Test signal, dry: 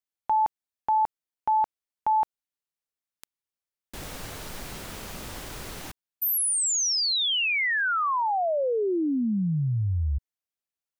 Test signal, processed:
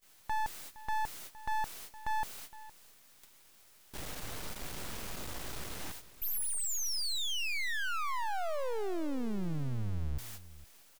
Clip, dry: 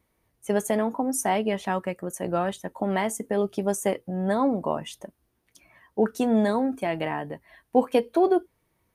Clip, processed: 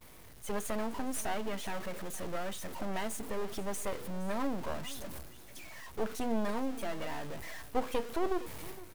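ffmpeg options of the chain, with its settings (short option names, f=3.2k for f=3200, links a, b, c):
-af "aeval=exprs='val(0)+0.5*0.0531*sgn(val(0))':c=same,agate=range=-33dB:threshold=-32dB:ratio=16:release=255:detection=rms,aeval=exprs='max(val(0),0)':c=same,aecho=1:1:464:0.133,volume=-8.5dB"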